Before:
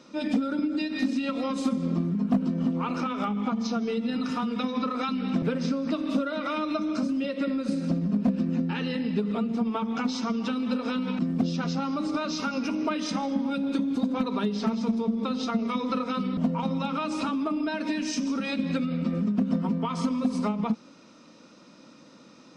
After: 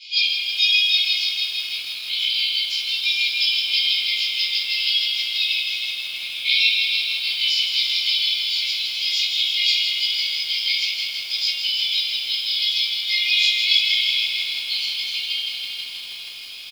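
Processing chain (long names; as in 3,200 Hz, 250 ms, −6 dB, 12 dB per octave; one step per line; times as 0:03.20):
Chebyshev low-pass filter 3,500 Hz, order 5
spectral tilt +4.5 dB per octave
double-tracking delay 22 ms −5.5 dB
feedback delay with all-pass diffusion 575 ms, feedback 45%, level −10.5 dB
reverb reduction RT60 0.59 s
convolution reverb RT60 1.3 s, pre-delay 3 ms, DRR −14 dB
downward compressor 16 to 1, threshold −17 dBFS, peak gain reduction 10 dB
wrong playback speed 33 rpm record played at 45 rpm
linear-phase brick-wall high-pass 2,100 Hz
feedback echo at a low word length 161 ms, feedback 80%, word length 8 bits, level −6.5 dB
level +6 dB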